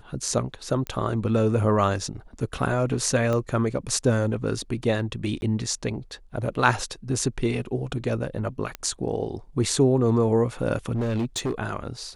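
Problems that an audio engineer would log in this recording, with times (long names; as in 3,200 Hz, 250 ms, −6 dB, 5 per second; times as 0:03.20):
0:00.87: click −17 dBFS
0:03.33: click −15 dBFS
0:05.41–0:05.42: drop-out 11 ms
0:08.75: click −15 dBFS
0:10.94–0:11.53: clipping −22 dBFS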